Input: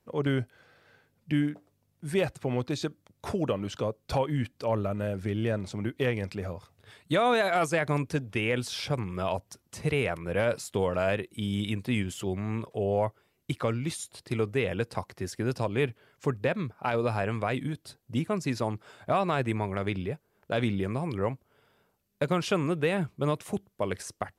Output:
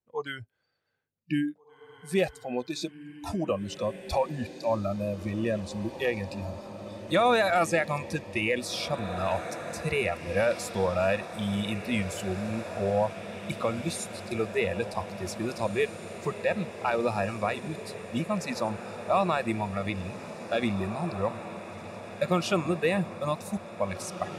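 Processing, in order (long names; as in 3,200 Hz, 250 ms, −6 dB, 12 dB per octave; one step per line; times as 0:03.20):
noise reduction from a noise print of the clip's start 22 dB
feedback delay with all-pass diffusion 1,939 ms, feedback 71%, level −12 dB
level +2 dB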